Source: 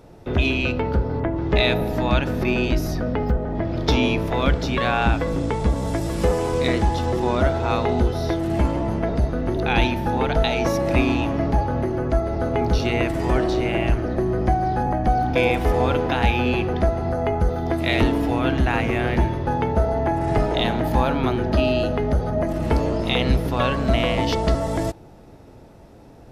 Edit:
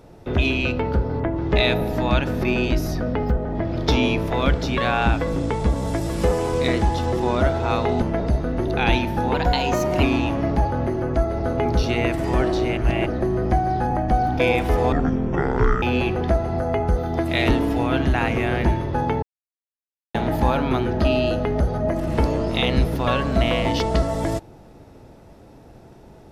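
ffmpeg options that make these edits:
ffmpeg -i in.wav -filter_complex "[0:a]asplit=10[link_01][link_02][link_03][link_04][link_05][link_06][link_07][link_08][link_09][link_10];[link_01]atrim=end=8.022[link_11];[link_02]atrim=start=8.908:end=10.234[link_12];[link_03]atrim=start=10.23:end=10.99,asetpts=PTS-STARTPTS,asetrate=48510,aresample=44100,atrim=end_sample=30469,asetpts=PTS-STARTPTS[link_13];[link_04]atrim=start=10.986:end=13.732[link_14];[link_05]atrim=start=13.728:end=14.022,asetpts=PTS-STARTPTS,areverse[link_15];[link_06]atrim=start=14.018:end=15.884[link_16];[link_07]atrim=start=15.88:end=16.35,asetpts=PTS-STARTPTS,asetrate=22932,aresample=44100[link_17];[link_08]atrim=start=16.346:end=19.75,asetpts=PTS-STARTPTS,afade=type=out:start_time=3.4:duration=0.004:curve=hsin[link_18];[link_09]atrim=start=19.75:end=20.67,asetpts=PTS-STARTPTS,volume=0[link_19];[link_10]atrim=start=20.67,asetpts=PTS-STARTPTS,afade=type=in:duration=0.004:curve=hsin[link_20];[link_11][link_12]acrossfade=duration=0.004:curve1=hsin:curve2=hsin[link_21];[link_21][link_13]acrossfade=duration=0.004:curve1=hsin:curve2=hsin[link_22];[link_22][link_14]acrossfade=duration=0.004:curve1=hsin:curve2=hsin[link_23];[link_23][link_15]acrossfade=duration=0.004:curve1=hsin:curve2=hsin[link_24];[link_24][link_16]acrossfade=duration=0.004:curve1=hsin:curve2=hsin[link_25];[link_25][link_17]acrossfade=duration=0.004:curve1=hsin:curve2=hsin[link_26];[link_18][link_19][link_20]concat=n=3:v=0:a=1[link_27];[link_26][link_27]acrossfade=duration=0.004:curve1=hsin:curve2=hsin" out.wav

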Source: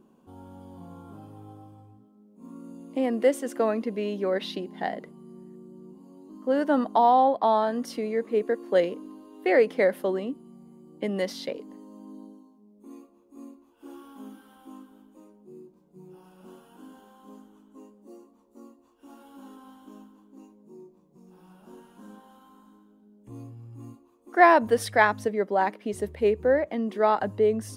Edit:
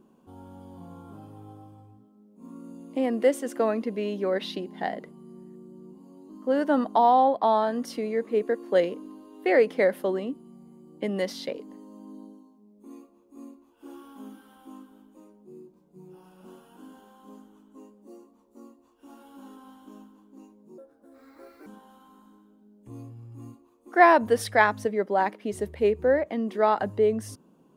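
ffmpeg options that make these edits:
ffmpeg -i in.wav -filter_complex "[0:a]asplit=3[link_01][link_02][link_03];[link_01]atrim=end=20.784[link_04];[link_02]atrim=start=20.78:end=22.07,asetpts=PTS-STARTPTS,asetrate=64386,aresample=44100,atrim=end_sample=38965,asetpts=PTS-STARTPTS[link_05];[link_03]atrim=start=22.066[link_06];[link_04][link_05]acrossfade=duration=0.004:curve1=hsin:curve2=hsin[link_07];[link_07][link_06]acrossfade=duration=0.004:curve1=hsin:curve2=hsin" out.wav

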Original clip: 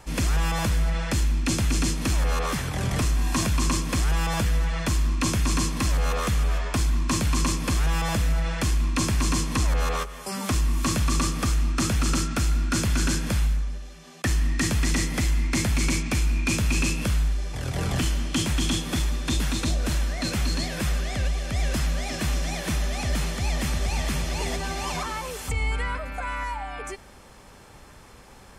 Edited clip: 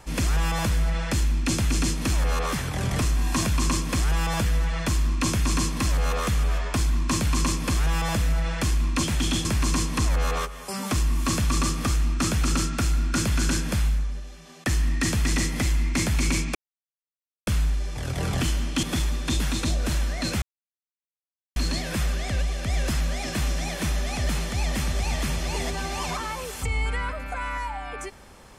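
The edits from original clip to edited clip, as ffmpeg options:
ffmpeg -i in.wav -filter_complex "[0:a]asplit=7[link_01][link_02][link_03][link_04][link_05][link_06][link_07];[link_01]atrim=end=9.032[link_08];[link_02]atrim=start=18.408:end=18.832[link_09];[link_03]atrim=start=9.028:end=16.13,asetpts=PTS-STARTPTS,afade=type=out:start_time=7.098:duration=0.004:curve=hsin[link_10];[link_04]atrim=start=16.13:end=17.05,asetpts=PTS-STARTPTS,volume=0[link_11];[link_05]atrim=start=17.05:end=18.412,asetpts=PTS-STARTPTS,afade=type=in:duration=0.004:curve=hsin[link_12];[link_06]atrim=start=18.828:end=20.42,asetpts=PTS-STARTPTS,afade=type=out:start_time=1.588:duration=0.004:curve=hsin,apad=pad_dur=1.14[link_13];[link_07]atrim=start=20.42,asetpts=PTS-STARTPTS,afade=type=in:duration=0.004:curve=hsin[link_14];[link_08][link_09]acrossfade=duration=0.004:curve1=hsin:curve2=hsin[link_15];[link_10][link_11][link_12]concat=n=3:v=0:a=1[link_16];[link_15][link_16]acrossfade=duration=0.004:curve1=hsin:curve2=hsin[link_17];[link_13][link_14]concat=n=2:v=0:a=1[link_18];[link_17][link_18]acrossfade=duration=0.004:curve1=hsin:curve2=hsin" out.wav

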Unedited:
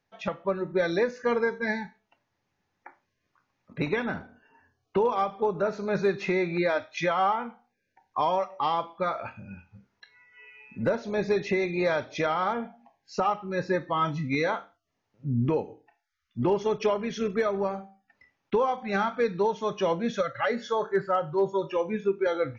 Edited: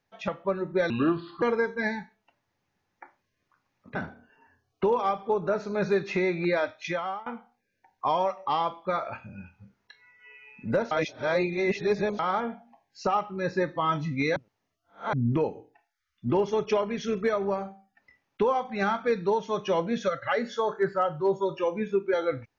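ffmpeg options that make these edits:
ffmpeg -i in.wav -filter_complex "[0:a]asplit=9[link_01][link_02][link_03][link_04][link_05][link_06][link_07][link_08][link_09];[link_01]atrim=end=0.904[link_10];[link_02]atrim=start=0.9:end=1.26,asetpts=PTS-STARTPTS,asetrate=30429,aresample=44100[link_11];[link_03]atrim=start=1.256:end=3.792[link_12];[link_04]atrim=start=4.078:end=7.39,asetpts=PTS-STARTPTS,afade=type=out:start_time=2.532:duration=0.78:curve=qsin:silence=0.0794328[link_13];[link_05]atrim=start=7.39:end=11.042,asetpts=PTS-STARTPTS,afade=type=in:duration=0.004:curve=hsin:silence=0.0794328[link_14];[link_06]atrim=start=11.038:end=12.322,asetpts=PTS-STARTPTS,areverse[link_15];[link_07]atrim=start=12.318:end=14.492[link_16];[link_08]atrim=start=14.488:end=15.262,asetpts=PTS-STARTPTS,areverse[link_17];[link_09]atrim=start=15.258[link_18];[link_10][link_11]acrossfade=duration=0.004:curve1=hsin:curve2=hsin[link_19];[link_19][link_12]acrossfade=duration=0.004:curve1=hsin:curve2=hsin[link_20];[link_13][link_14]concat=n=2:v=0:a=1[link_21];[link_20][link_21]acrossfade=duration=0.004:curve1=hsin:curve2=hsin[link_22];[link_22][link_15]acrossfade=duration=0.004:curve1=hsin:curve2=hsin[link_23];[link_23][link_16]acrossfade=duration=0.004:curve1=hsin:curve2=hsin[link_24];[link_24][link_17]acrossfade=duration=0.004:curve1=hsin:curve2=hsin[link_25];[link_25][link_18]acrossfade=duration=0.004:curve1=hsin:curve2=hsin" out.wav

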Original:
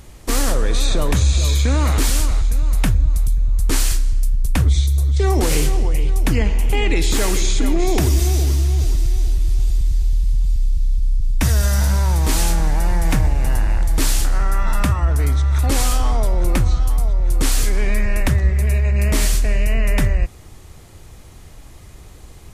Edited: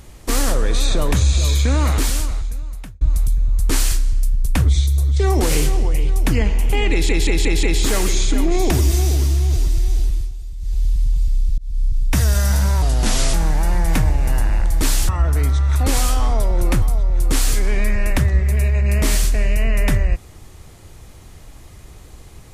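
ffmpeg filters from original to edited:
ffmpeg -i in.wav -filter_complex "[0:a]asplit=13[link_01][link_02][link_03][link_04][link_05][link_06][link_07][link_08][link_09][link_10][link_11][link_12][link_13];[link_01]atrim=end=3.01,asetpts=PTS-STARTPTS,afade=type=out:start_time=1.85:duration=1.16[link_14];[link_02]atrim=start=3.01:end=7.092,asetpts=PTS-STARTPTS,afade=type=in:duration=0.004:curve=hsin[link_15];[link_03]atrim=start=6.908:end=7.092[link_16];[link_04]atrim=start=6.908:end=7.092[link_17];[link_05]atrim=start=6.908:end=7.092[link_18];[link_06]atrim=start=6.908:end=9.6,asetpts=PTS-STARTPTS,afade=type=out:start_time=2.362:duration=0.33:curve=qsin:silence=0.223872[link_19];[link_07]atrim=start=9.6:end=9.87,asetpts=PTS-STARTPTS,volume=-13dB[link_20];[link_08]atrim=start=9.87:end=10.86,asetpts=PTS-STARTPTS,afade=type=in:duration=0.33:curve=qsin:silence=0.223872,afade=type=out:start_time=0.986:duration=0.004:curve=hsin[link_21];[link_09]atrim=start=10.86:end=12.104,asetpts=PTS-STARTPTS,afade=type=in:duration=0.26[link_22];[link_10]atrim=start=12.1:end=12.51,asetpts=PTS-STARTPTS,asetrate=34839,aresample=44100,atrim=end_sample=22887,asetpts=PTS-STARTPTS[link_23];[link_11]atrim=start=12.506:end=14.262[link_24];[link_12]atrim=start=14.918:end=16.652[link_25];[link_13]atrim=start=16.918[link_26];[link_14][link_15]concat=n=2:v=0:a=1[link_27];[link_27][link_16]acrossfade=duration=0.004:curve1=hsin:curve2=hsin[link_28];[link_28][link_17]acrossfade=duration=0.004:curve1=hsin:curve2=hsin[link_29];[link_29][link_18]acrossfade=duration=0.004:curve1=hsin:curve2=hsin[link_30];[link_19][link_20][link_21][link_22]concat=n=4:v=0:a=1[link_31];[link_30][link_31]acrossfade=duration=0.004:curve1=hsin:curve2=hsin[link_32];[link_32][link_23]acrossfade=duration=0.004:curve1=hsin:curve2=hsin[link_33];[link_33][link_24]acrossfade=duration=0.004:curve1=hsin:curve2=hsin[link_34];[link_34][link_25]acrossfade=duration=0.004:curve1=hsin:curve2=hsin[link_35];[link_35][link_26]acrossfade=duration=0.004:curve1=hsin:curve2=hsin" out.wav

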